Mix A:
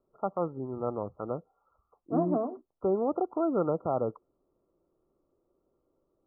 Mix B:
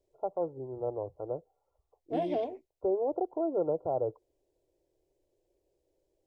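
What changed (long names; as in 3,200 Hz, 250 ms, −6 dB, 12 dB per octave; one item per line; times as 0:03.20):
second voice: remove elliptic band-pass filter 270–1,200 Hz, stop band 40 dB
master: add phaser with its sweep stopped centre 520 Hz, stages 4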